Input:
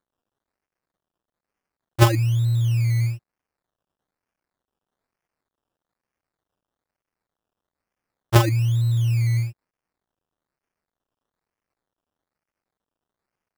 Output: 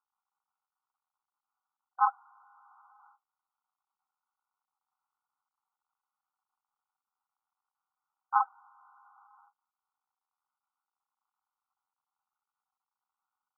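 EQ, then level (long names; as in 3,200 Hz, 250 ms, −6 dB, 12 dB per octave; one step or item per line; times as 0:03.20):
linear-phase brick-wall band-pass 740–1,500 Hz
0.0 dB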